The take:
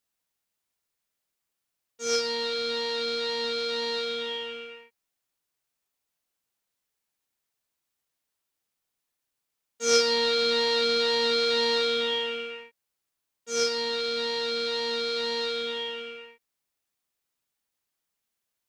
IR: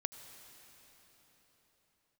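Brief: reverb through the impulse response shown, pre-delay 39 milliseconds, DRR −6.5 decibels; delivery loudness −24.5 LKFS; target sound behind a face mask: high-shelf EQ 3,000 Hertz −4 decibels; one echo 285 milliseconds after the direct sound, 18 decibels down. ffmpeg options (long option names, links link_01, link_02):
-filter_complex "[0:a]aecho=1:1:285:0.126,asplit=2[link_01][link_02];[1:a]atrim=start_sample=2205,adelay=39[link_03];[link_02][link_03]afir=irnorm=-1:irlink=0,volume=7dB[link_04];[link_01][link_04]amix=inputs=2:normalize=0,highshelf=frequency=3000:gain=-4,volume=-4.5dB"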